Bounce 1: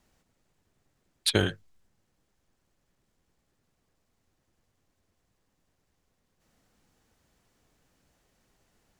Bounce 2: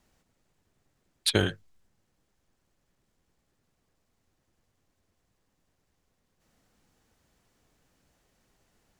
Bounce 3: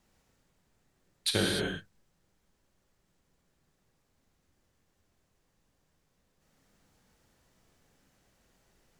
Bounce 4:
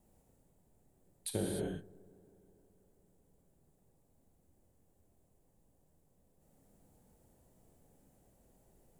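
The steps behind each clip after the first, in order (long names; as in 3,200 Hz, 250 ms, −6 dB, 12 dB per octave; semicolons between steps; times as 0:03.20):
no processing that can be heard
in parallel at +0.5 dB: brickwall limiter −18.5 dBFS, peak gain reduction 11.5 dB; on the sum: reverb whose tail is shaped and stops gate 320 ms flat, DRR −1 dB; level −8.5 dB
downward compressor 2 to 1, threshold −40 dBFS, peak gain reduction 9 dB; flat-topped bell 2,600 Hz −14.5 dB 2.8 octaves; delay with a low-pass on its return 161 ms, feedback 76%, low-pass 1,100 Hz, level −23.5 dB; level +3 dB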